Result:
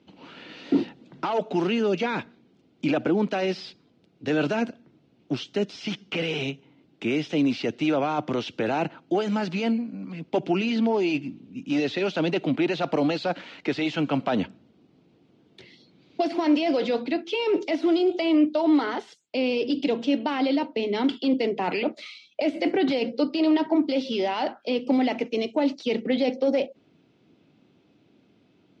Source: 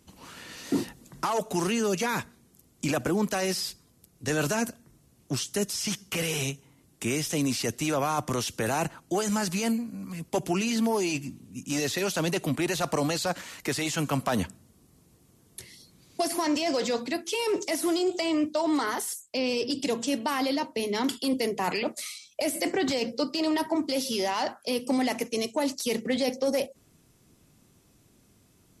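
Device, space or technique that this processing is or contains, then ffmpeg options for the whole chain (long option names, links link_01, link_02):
kitchen radio: -af "highpass=180,equalizer=frequency=300:width_type=q:width=4:gain=4,equalizer=frequency=1100:width_type=q:width=4:gain=-8,equalizer=frequency=1800:width_type=q:width=4:gain=-6,lowpass=frequency=3600:width=0.5412,lowpass=frequency=3600:width=1.3066,volume=3.5dB"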